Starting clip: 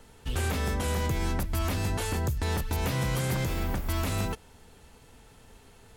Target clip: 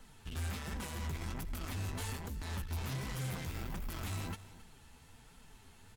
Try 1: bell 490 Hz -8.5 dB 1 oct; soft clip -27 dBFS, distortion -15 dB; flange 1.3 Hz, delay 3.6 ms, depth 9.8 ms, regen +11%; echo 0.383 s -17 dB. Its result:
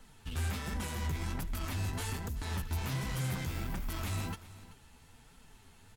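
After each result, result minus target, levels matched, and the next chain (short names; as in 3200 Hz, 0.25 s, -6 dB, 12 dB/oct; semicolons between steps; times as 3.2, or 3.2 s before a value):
echo 0.113 s late; soft clip: distortion -6 dB
bell 490 Hz -8.5 dB 1 oct; soft clip -27 dBFS, distortion -15 dB; flange 1.3 Hz, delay 3.6 ms, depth 9.8 ms, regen +11%; echo 0.27 s -17 dB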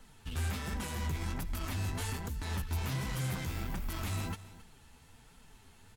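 soft clip: distortion -6 dB
bell 490 Hz -8.5 dB 1 oct; soft clip -33.5 dBFS, distortion -9 dB; flange 1.3 Hz, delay 3.6 ms, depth 9.8 ms, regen +11%; echo 0.27 s -17 dB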